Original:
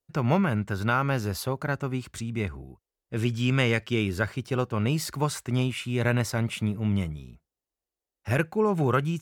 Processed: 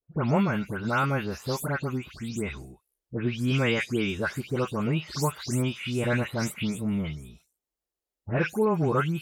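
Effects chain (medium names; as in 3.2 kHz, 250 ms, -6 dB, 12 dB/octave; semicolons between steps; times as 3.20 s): delay that grows with frequency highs late, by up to 219 ms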